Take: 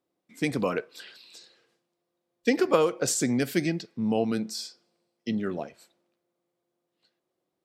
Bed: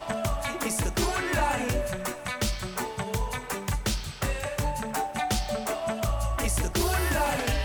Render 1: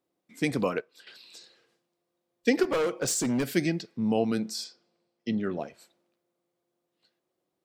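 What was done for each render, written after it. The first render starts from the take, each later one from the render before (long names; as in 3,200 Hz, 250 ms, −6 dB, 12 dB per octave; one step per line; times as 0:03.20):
0:00.65–0:01.07: expander for the loud parts, over −47 dBFS
0:02.63–0:03.53: hard clipping −23.5 dBFS
0:04.64–0:05.60: high-frequency loss of the air 68 metres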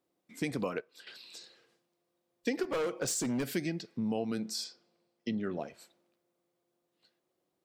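downward compressor 2.5 to 1, threshold −33 dBFS, peak gain reduction 10.5 dB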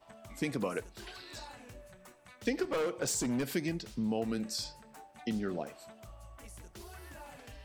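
mix in bed −23.5 dB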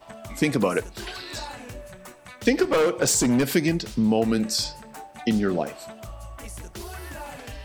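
level +12 dB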